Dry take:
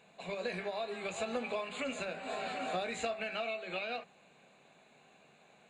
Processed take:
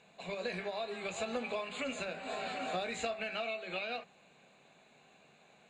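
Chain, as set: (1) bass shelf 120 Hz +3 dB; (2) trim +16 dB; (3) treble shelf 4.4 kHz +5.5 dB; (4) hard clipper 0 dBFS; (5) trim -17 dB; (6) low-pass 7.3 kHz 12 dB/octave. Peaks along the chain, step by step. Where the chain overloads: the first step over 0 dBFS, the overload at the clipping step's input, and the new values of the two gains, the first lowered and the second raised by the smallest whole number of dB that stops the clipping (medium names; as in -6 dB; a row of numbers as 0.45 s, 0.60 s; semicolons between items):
-22.5 dBFS, -6.5 dBFS, -5.5 dBFS, -5.5 dBFS, -22.5 dBFS, -22.5 dBFS; nothing clips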